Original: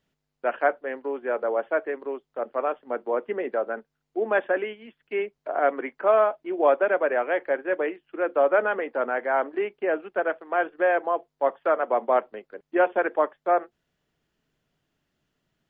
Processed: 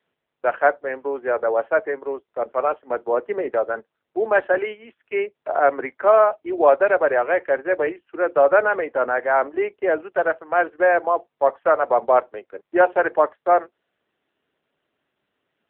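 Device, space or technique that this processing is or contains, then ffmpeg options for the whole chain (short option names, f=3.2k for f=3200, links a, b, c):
telephone: -af "highpass=320,lowpass=3.1k,volume=6dB" -ar 8000 -c:a libopencore_amrnb -b:a 7950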